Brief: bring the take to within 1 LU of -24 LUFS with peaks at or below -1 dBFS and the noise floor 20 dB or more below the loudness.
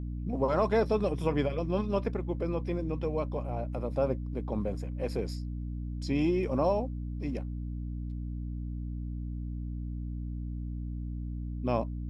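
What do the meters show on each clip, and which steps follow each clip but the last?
hum 60 Hz; harmonics up to 300 Hz; hum level -33 dBFS; loudness -33.0 LUFS; peak -14.0 dBFS; loudness target -24.0 LUFS
-> notches 60/120/180/240/300 Hz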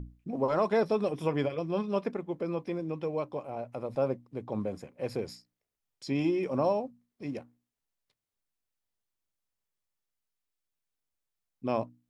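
hum none; loudness -32.0 LUFS; peak -15.0 dBFS; loudness target -24.0 LUFS
-> gain +8 dB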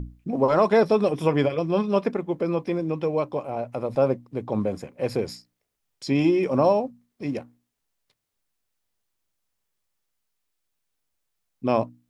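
loudness -24.5 LUFS; peak -7.0 dBFS; noise floor -80 dBFS

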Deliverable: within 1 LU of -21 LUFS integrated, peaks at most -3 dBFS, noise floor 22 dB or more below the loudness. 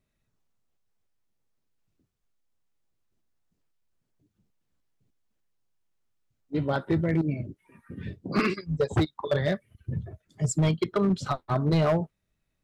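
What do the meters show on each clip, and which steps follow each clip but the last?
clipped 0.9%; flat tops at -18.0 dBFS; loudness -27.5 LUFS; peak -18.0 dBFS; loudness target -21.0 LUFS
-> clip repair -18 dBFS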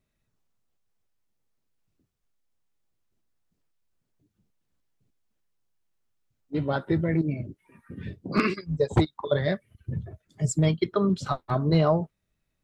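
clipped 0.0%; loudness -26.5 LUFS; peak -9.0 dBFS; loudness target -21.0 LUFS
-> gain +5.5 dB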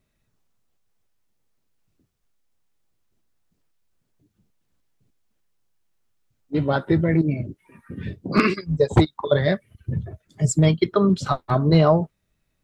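loudness -21.0 LUFS; peak -3.5 dBFS; noise floor -73 dBFS

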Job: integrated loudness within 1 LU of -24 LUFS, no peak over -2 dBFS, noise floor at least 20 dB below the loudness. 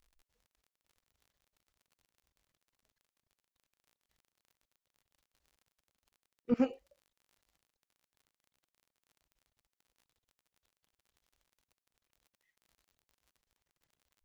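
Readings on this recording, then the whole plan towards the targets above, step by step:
ticks 32/s; loudness -33.5 LUFS; peak -18.0 dBFS; loudness target -24.0 LUFS
-> de-click; gain +9.5 dB

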